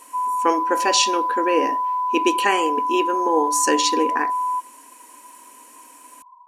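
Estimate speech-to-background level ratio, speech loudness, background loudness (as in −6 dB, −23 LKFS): 1.0 dB, −22.0 LKFS, −23.0 LKFS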